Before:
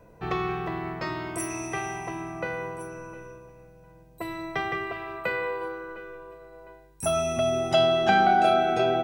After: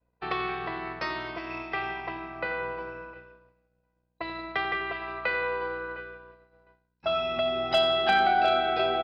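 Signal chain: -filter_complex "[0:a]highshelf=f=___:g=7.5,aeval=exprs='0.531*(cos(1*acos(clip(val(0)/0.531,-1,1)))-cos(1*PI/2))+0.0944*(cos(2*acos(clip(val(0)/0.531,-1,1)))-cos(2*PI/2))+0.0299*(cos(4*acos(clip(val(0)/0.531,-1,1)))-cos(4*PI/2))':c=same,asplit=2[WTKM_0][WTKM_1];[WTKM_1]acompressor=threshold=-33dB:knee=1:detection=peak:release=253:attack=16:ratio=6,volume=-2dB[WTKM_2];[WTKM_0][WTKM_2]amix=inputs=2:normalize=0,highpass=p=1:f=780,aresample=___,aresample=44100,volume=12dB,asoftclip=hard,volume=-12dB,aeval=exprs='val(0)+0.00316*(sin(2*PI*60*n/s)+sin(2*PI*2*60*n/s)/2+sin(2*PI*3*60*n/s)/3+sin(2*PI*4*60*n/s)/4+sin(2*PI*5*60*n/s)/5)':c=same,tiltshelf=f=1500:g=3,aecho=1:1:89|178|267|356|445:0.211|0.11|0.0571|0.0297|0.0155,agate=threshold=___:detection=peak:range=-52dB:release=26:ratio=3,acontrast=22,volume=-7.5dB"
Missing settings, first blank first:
2000, 11025, -35dB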